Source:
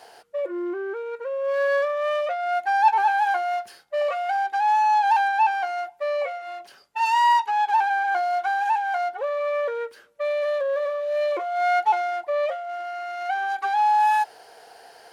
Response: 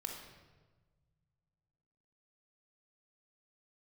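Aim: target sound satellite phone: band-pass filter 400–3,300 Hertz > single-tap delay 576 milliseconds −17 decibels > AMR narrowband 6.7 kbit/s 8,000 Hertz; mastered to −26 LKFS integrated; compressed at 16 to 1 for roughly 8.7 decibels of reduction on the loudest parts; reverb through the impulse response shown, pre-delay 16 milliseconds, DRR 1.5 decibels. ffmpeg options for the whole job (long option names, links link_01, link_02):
-filter_complex "[0:a]acompressor=threshold=-21dB:ratio=16,asplit=2[link_01][link_02];[1:a]atrim=start_sample=2205,adelay=16[link_03];[link_02][link_03]afir=irnorm=-1:irlink=0,volume=-0.5dB[link_04];[link_01][link_04]amix=inputs=2:normalize=0,highpass=400,lowpass=3300,aecho=1:1:576:0.141,volume=1dB" -ar 8000 -c:a libopencore_amrnb -b:a 6700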